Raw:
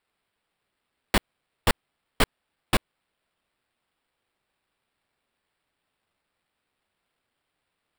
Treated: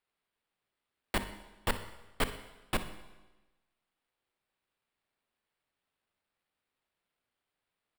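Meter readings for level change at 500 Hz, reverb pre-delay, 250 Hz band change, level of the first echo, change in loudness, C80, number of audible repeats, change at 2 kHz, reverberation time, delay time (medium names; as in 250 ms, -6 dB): -8.0 dB, 19 ms, -9.0 dB, -16.0 dB, -9.0 dB, 13.5 dB, 1, -8.5 dB, 1.1 s, 62 ms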